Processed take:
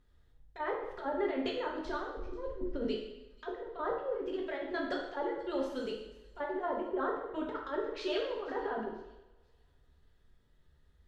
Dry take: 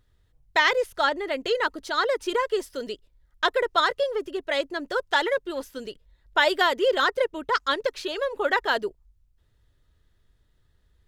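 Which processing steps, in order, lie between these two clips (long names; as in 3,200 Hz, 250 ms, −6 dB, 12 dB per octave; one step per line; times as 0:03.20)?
0:01.85–0:02.85: RIAA equalisation playback
treble cut that deepens with the level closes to 600 Hz, closed at −18 dBFS
high-shelf EQ 2,900 Hz −7 dB
mains-hum notches 60/120/180/240/300/360 Hz
compressor whose output falls as the input rises −30 dBFS, ratio −0.5
delay with a high-pass on its return 487 ms, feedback 35%, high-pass 4,800 Hz, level −16.5 dB
coupled-rooms reverb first 0.86 s, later 2.7 s, from −27 dB, DRR −1.5 dB
level −8 dB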